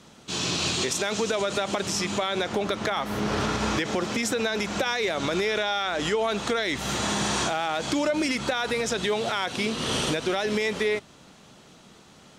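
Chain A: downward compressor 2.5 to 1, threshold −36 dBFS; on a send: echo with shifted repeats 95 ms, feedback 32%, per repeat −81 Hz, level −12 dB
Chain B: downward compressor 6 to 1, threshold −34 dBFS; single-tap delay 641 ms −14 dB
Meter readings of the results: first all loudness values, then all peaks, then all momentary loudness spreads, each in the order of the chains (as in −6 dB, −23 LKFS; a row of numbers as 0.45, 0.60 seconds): −34.5, −36.0 LKFS; −22.0, −23.0 dBFS; 3, 3 LU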